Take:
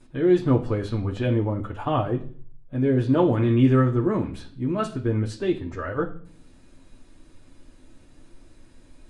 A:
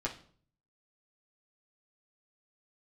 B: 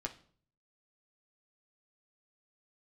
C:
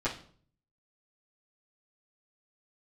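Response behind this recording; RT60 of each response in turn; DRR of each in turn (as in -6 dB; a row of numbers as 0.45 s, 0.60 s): C; no single decay rate, no single decay rate, no single decay rate; -5.5 dB, 0.5 dB, -13.5 dB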